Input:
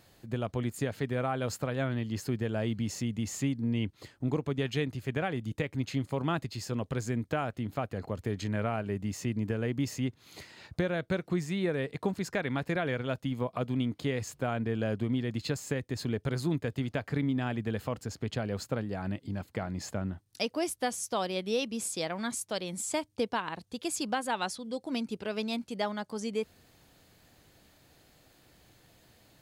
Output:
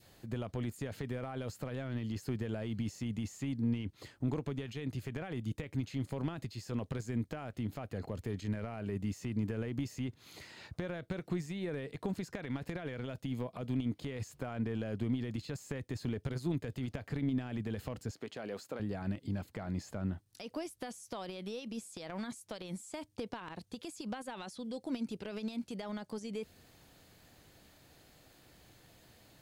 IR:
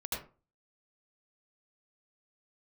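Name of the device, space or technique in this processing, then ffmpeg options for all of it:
de-esser from a sidechain: -filter_complex "[0:a]asettb=1/sr,asplit=3[a][b][c];[a]atrim=end=18.114[d];[b]atrim=start=18.11:end=18.8,asetpts=PTS-STARTPTS,afade=t=in:d=0.004:c=qsin,afade=t=out:st=0.686:d=0.004:c=qsin,highpass=300[e];[c]atrim=start=18.796[f];[d][e]acrossfade=d=0.004:c1=hsin:c2=qsin[g];[g][f]acrossfade=d=0.004:c1=qsin:c2=hsin,asplit=2[h][i];[i]highpass=f=5.6k:p=1,apad=whole_len=1297357[j];[h][j]sidechaincompress=threshold=-53dB:ratio=4:attack=1.4:release=29,adynamicequalizer=threshold=0.00178:dfrequency=1100:dqfactor=1.1:tfrequency=1100:tqfactor=1.1:attack=5:release=100:ratio=0.375:range=2:mode=cutabove:tftype=bell"

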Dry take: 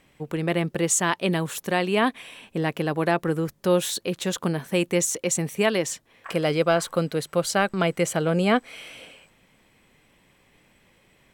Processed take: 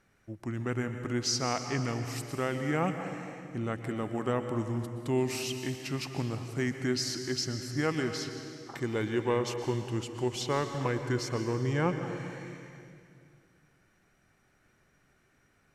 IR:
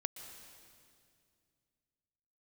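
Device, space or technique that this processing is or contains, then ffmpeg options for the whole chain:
slowed and reverbed: -filter_complex "[0:a]asetrate=31752,aresample=44100[a];[1:a]atrim=start_sample=2205[b];[a][b]afir=irnorm=-1:irlink=0,volume=-7dB"

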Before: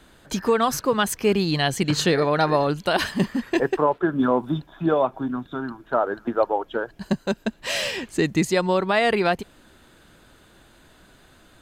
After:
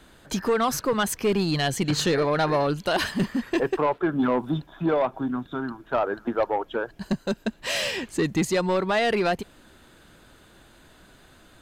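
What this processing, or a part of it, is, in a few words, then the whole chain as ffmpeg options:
saturation between pre-emphasis and de-emphasis: -af "highshelf=f=6.1k:g=6.5,asoftclip=type=tanh:threshold=-15.5dB,highshelf=f=6.1k:g=-6.5"

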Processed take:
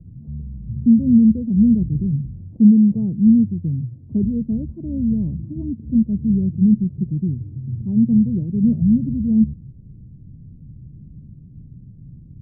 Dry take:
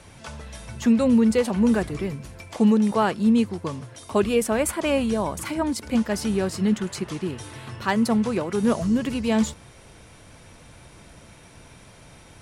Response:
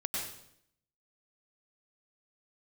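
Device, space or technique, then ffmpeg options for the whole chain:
the neighbour's flat through the wall: -af "lowpass=f=230:w=0.5412,lowpass=f=230:w=1.3066,equalizer=f=140:t=o:w=0.74:g=6.5,volume=7.5dB"

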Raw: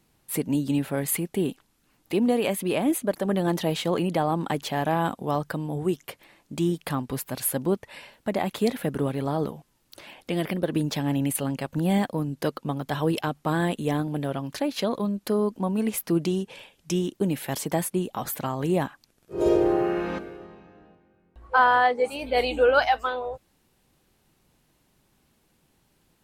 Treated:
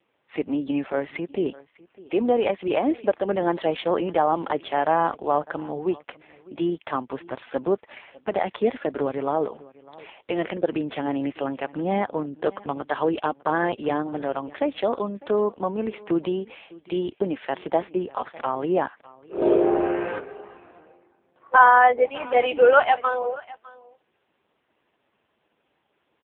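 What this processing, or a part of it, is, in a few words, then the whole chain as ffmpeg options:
satellite phone: -af "highpass=380,lowpass=3.3k,aecho=1:1:603:0.0841,volume=6dB" -ar 8000 -c:a libopencore_amrnb -b:a 5150

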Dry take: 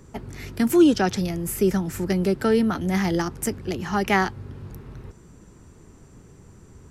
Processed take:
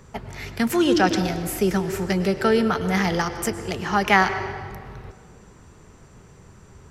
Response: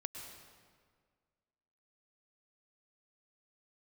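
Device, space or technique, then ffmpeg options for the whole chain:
filtered reverb send: -filter_complex "[0:a]asplit=2[a][b];[b]highpass=f=300:w=0.5412,highpass=f=300:w=1.3066,lowpass=6.3k[c];[1:a]atrim=start_sample=2205[d];[c][d]afir=irnorm=-1:irlink=0,volume=1.5dB[e];[a][e]amix=inputs=2:normalize=0"

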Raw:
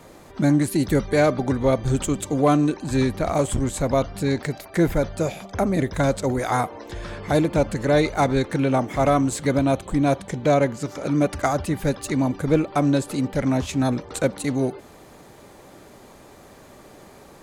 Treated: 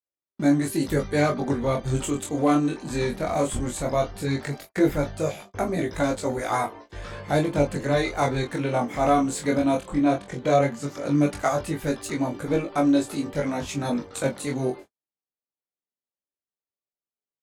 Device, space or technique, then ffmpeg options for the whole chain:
double-tracked vocal: -filter_complex "[0:a]asettb=1/sr,asplit=3[a][b][c];[a]atrim=end=9.884[d];[b]atrim=start=9.88:end=10.32,asetpts=PTS-STARTPTS,afade=t=in:d=0.004:c=qsin,afade=t=out:st=0.436:d=0.004:c=qsin,highshelf=f=7.9k:g=-11.5[e];[c]atrim=start=10.316[f];[d][e]acrossfade=d=0.004:c1=hsin:c2=qsin[g];[g][f]acrossfade=d=0.004:c1=qsin:c2=hsin,agate=range=-56dB:threshold=-35dB:ratio=16:detection=peak,asplit=2[h][i];[i]adelay=21,volume=-5dB[j];[h][j]amix=inputs=2:normalize=0,flanger=delay=17.5:depth=7.7:speed=0.16,lowshelf=f=180:g=-5.5"

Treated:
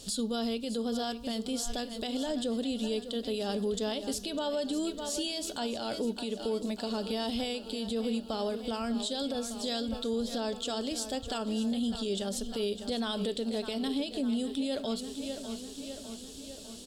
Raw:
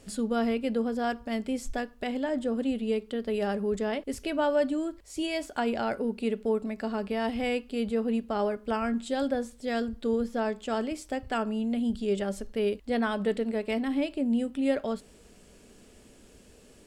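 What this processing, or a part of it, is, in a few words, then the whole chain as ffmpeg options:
over-bright horn tweeter: -af "highshelf=f=2.8k:t=q:w=3:g=9.5,aecho=1:1:602|1204|1806|2408|3010|3612:0.2|0.118|0.0695|0.041|0.0242|0.0143,alimiter=level_in=1.5dB:limit=-24dB:level=0:latency=1:release=137,volume=-1.5dB,volume=1.5dB"

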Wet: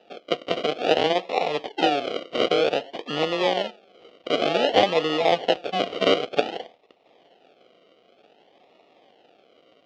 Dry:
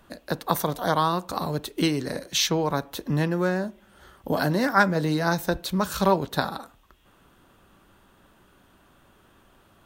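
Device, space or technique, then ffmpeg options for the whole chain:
circuit-bent sampling toy: -af "acrusher=samples=40:mix=1:aa=0.000001:lfo=1:lforange=24:lforate=0.54,highpass=430,equalizer=f=480:t=q:w=4:g=6,equalizer=f=720:t=q:w=4:g=8,equalizer=f=1k:t=q:w=4:g=-6,equalizer=f=1.6k:t=q:w=4:g=-7,equalizer=f=3k:t=q:w=4:g=9,lowpass=f=4.6k:w=0.5412,lowpass=f=4.6k:w=1.3066,volume=3.5dB"

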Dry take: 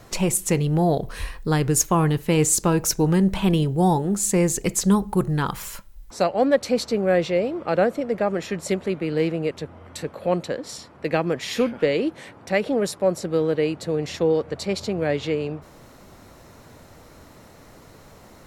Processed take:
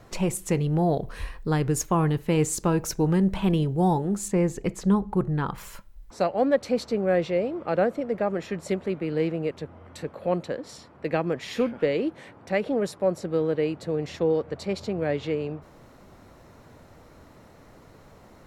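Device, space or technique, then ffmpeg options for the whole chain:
behind a face mask: -filter_complex "[0:a]asettb=1/sr,asplit=3[a][b][c];[a]atrim=end=4.284[d];[b]atrim=start=4.28:end=5.58,asetpts=PTS-STARTPTS,afade=t=in:d=0.004:c=qsin,afade=t=out:st=1.296:d=0.004:c=qsin,highshelf=f=4.3k:g=-11[e];[c]atrim=start=5.576[f];[d][e]acrossfade=d=0.004:c1=hsin:c2=qsin[g];[g][f]acrossfade=d=0.004:c1=qsin:c2=hsin,highshelf=f=3.4k:g=-8,volume=-3dB"

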